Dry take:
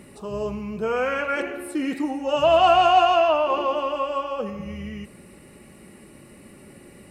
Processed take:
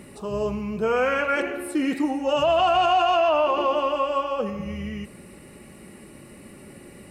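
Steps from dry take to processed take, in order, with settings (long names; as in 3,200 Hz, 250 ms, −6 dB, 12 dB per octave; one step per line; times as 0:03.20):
brickwall limiter −15 dBFS, peak gain reduction 7.5 dB
level +2 dB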